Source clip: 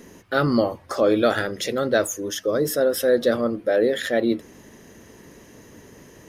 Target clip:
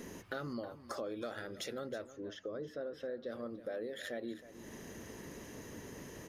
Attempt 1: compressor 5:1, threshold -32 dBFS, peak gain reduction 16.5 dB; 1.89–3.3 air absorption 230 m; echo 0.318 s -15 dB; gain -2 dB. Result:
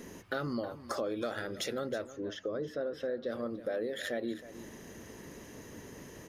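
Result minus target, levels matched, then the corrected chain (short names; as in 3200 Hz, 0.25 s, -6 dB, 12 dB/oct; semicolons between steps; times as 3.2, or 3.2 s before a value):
compressor: peak gain reduction -6 dB
compressor 5:1, threshold -39.5 dBFS, peak gain reduction 22.5 dB; 1.89–3.3 air absorption 230 m; echo 0.318 s -15 dB; gain -2 dB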